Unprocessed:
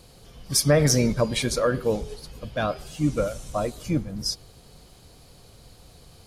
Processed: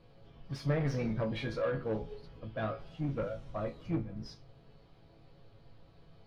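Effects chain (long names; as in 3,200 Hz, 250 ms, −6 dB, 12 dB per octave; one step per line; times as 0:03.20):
resonators tuned to a chord A2 major, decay 0.24 s
in parallel at −6 dB: wave folding −36 dBFS
on the sum: high-frequency loss of the air 340 metres
level +2 dB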